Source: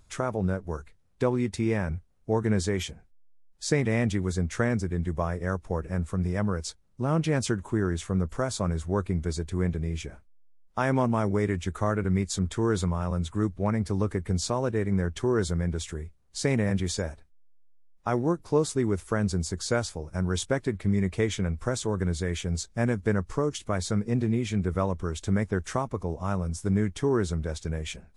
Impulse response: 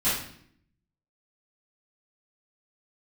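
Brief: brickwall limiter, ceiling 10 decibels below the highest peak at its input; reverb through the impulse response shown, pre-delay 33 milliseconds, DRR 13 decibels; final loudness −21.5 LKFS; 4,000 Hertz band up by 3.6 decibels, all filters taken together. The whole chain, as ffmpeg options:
-filter_complex "[0:a]equalizer=frequency=4000:width_type=o:gain=4.5,alimiter=limit=-21dB:level=0:latency=1,asplit=2[link_01][link_02];[1:a]atrim=start_sample=2205,adelay=33[link_03];[link_02][link_03]afir=irnorm=-1:irlink=0,volume=-25.5dB[link_04];[link_01][link_04]amix=inputs=2:normalize=0,volume=10.5dB"

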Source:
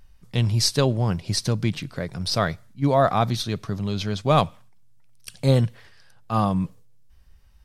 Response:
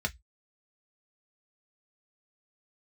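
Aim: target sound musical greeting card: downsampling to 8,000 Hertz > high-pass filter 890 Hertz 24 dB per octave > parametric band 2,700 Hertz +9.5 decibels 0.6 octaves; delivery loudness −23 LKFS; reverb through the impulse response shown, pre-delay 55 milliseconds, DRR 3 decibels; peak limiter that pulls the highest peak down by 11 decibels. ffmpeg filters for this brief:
-filter_complex "[0:a]alimiter=limit=-16dB:level=0:latency=1,asplit=2[link_01][link_02];[1:a]atrim=start_sample=2205,adelay=55[link_03];[link_02][link_03]afir=irnorm=-1:irlink=0,volume=-8.5dB[link_04];[link_01][link_04]amix=inputs=2:normalize=0,aresample=8000,aresample=44100,highpass=frequency=890:width=0.5412,highpass=frequency=890:width=1.3066,equalizer=frequency=2700:width_type=o:width=0.6:gain=9.5,volume=10dB"

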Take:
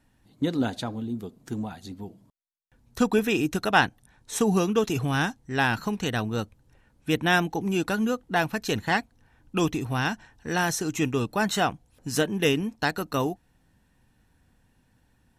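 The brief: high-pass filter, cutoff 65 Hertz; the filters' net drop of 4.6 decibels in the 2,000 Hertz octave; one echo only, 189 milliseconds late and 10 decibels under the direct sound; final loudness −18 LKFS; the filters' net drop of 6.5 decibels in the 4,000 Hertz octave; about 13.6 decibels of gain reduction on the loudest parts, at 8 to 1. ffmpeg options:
ffmpeg -i in.wav -af "highpass=65,equalizer=frequency=2000:width_type=o:gain=-5,equalizer=frequency=4000:width_type=o:gain=-7,acompressor=threshold=-32dB:ratio=8,aecho=1:1:189:0.316,volume=19dB" out.wav

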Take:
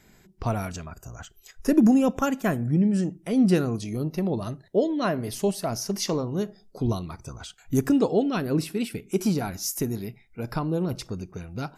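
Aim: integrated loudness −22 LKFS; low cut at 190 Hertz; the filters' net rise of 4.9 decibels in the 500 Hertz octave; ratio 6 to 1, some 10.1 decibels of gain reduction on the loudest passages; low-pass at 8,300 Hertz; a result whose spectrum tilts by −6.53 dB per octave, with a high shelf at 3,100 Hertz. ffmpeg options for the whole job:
ffmpeg -i in.wav -af "highpass=190,lowpass=8300,equalizer=frequency=500:width_type=o:gain=6.5,highshelf=frequency=3100:gain=-7.5,acompressor=threshold=-23dB:ratio=6,volume=8dB" out.wav

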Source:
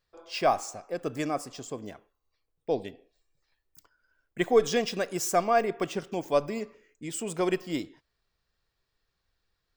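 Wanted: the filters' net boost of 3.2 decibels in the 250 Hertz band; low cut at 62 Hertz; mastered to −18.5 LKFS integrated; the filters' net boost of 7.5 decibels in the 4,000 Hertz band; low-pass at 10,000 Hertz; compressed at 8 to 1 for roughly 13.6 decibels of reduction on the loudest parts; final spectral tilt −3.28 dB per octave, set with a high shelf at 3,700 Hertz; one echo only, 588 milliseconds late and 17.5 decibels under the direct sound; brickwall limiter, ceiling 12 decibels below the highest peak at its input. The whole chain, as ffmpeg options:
ffmpeg -i in.wav -af "highpass=62,lowpass=10000,equalizer=frequency=250:width_type=o:gain=4.5,highshelf=frequency=3700:gain=8,equalizer=frequency=4000:width_type=o:gain=4.5,acompressor=threshold=-28dB:ratio=8,alimiter=level_in=5dB:limit=-24dB:level=0:latency=1,volume=-5dB,aecho=1:1:588:0.133,volume=21dB" out.wav

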